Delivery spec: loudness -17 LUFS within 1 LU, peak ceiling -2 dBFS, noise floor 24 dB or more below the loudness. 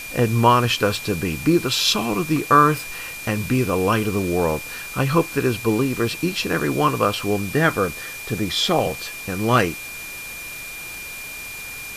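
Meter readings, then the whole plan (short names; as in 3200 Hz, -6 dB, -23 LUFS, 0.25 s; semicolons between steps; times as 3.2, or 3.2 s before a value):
steady tone 2400 Hz; tone level -33 dBFS; noise floor -34 dBFS; noise floor target -45 dBFS; loudness -21.0 LUFS; peak -3.0 dBFS; loudness target -17.0 LUFS
-> notch 2400 Hz, Q 30; noise print and reduce 11 dB; gain +4 dB; limiter -2 dBFS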